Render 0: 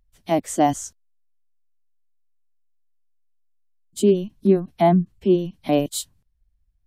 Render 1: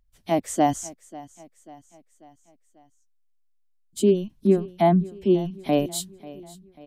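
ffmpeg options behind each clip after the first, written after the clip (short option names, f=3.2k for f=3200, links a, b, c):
-af "aecho=1:1:541|1082|1623|2164:0.106|0.054|0.0276|0.0141,volume=-2dB"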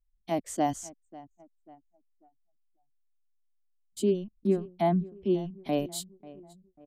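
-af "anlmdn=0.1,equalizer=f=4.6k:w=6.5:g=3.5,volume=-7dB"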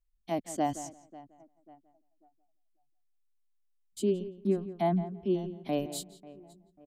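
-filter_complex "[0:a]asplit=2[a][b];[b]adelay=170,lowpass=f=2.8k:p=1,volume=-13.5dB,asplit=2[c][d];[d]adelay=170,lowpass=f=2.8k:p=1,volume=0.16[e];[a][c][e]amix=inputs=3:normalize=0,volume=-2.5dB"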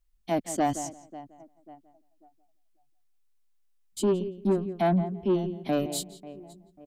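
-af "asoftclip=type=tanh:threshold=-24dB,volume=6.5dB"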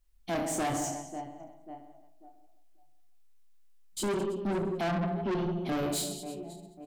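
-af "aecho=1:1:30|72|130.8|213.1|328.4:0.631|0.398|0.251|0.158|0.1,asoftclip=type=tanh:threshold=-30dB,volume=2dB"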